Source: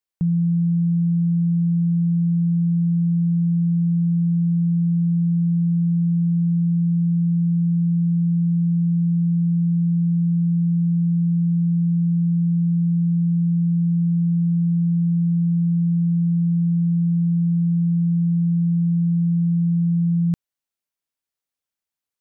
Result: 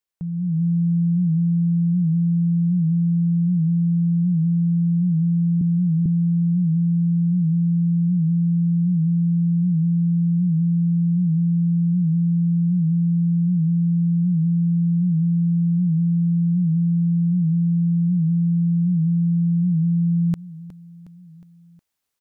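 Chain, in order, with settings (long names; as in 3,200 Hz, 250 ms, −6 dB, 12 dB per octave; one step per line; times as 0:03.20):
0:05.61–0:06.06: high-pass filter 200 Hz 12 dB per octave
repeating echo 363 ms, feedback 55%, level −24 dB
brickwall limiter −24.5 dBFS, peak gain reduction 9 dB
automatic gain control gain up to 9 dB
wow of a warped record 78 rpm, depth 100 cents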